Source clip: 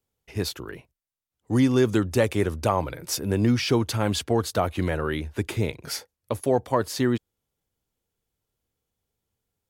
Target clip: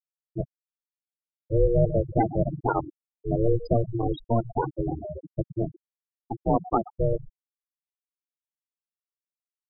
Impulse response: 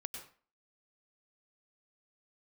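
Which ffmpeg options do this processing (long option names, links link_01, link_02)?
-filter_complex "[0:a]asplit=2[link_01][link_02];[1:a]atrim=start_sample=2205,asetrate=34398,aresample=44100,highshelf=frequency=2900:gain=6.5[link_03];[link_02][link_03]afir=irnorm=-1:irlink=0,volume=-15.5dB[link_04];[link_01][link_04]amix=inputs=2:normalize=0,aeval=exprs='val(0)*sin(2*PI*230*n/s)':channel_layout=same,aecho=1:1:125:0.282,afftfilt=real='re*gte(hypot(re,im),0.178)':imag='im*gte(hypot(re,im),0.178)':win_size=1024:overlap=0.75,volume=1.5dB"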